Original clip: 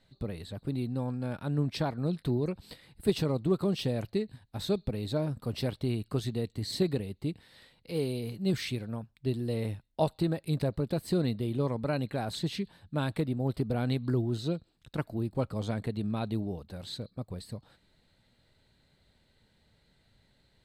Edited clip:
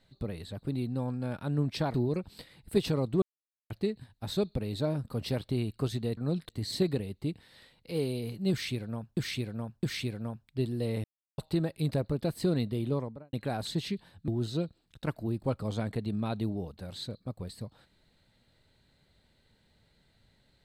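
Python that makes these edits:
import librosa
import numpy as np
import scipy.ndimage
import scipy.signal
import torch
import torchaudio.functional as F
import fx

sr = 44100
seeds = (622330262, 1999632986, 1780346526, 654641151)

y = fx.studio_fade_out(x, sr, start_s=11.52, length_s=0.49)
y = fx.edit(y, sr, fx.move(start_s=1.94, length_s=0.32, to_s=6.49),
    fx.silence(start_s=3.54, length_s=0.48),
    fx.repeat(start_s=8.51, length_s=0.66, count=3),
    fx.silence(start_s=9.72, length_s=0.34),
    fx.cut(start_s=12.96, length_s=1.23), tone=tone)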